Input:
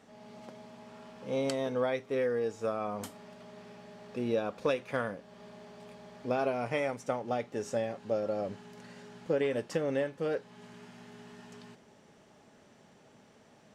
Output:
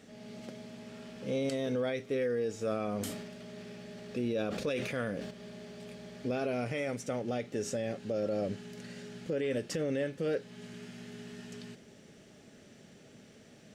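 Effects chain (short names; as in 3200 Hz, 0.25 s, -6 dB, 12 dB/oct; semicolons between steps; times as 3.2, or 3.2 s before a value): bell 950 Hz -14.5 dB 0.89 oct; limiter -30.5 dBFS, peak gain reduction 11 dB; 2.64–5.31 sustainer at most 40 dB/s; gain +6 dB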